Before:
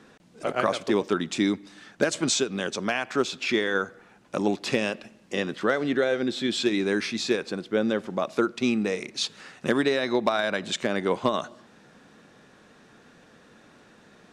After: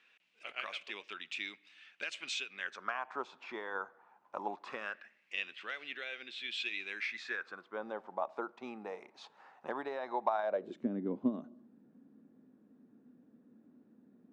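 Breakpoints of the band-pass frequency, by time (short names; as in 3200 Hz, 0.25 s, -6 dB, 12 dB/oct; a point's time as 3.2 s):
band-pass, Q 4.4
2.45 s 2600 Hz
3.06 s 940 Hz
4.57 s 940 Hz
5.37 s 2600 Hz
6.89 s 2600 Hz
7.91 s 860 Hz
10.42 s 860 Hz
10.82 s 250 Hz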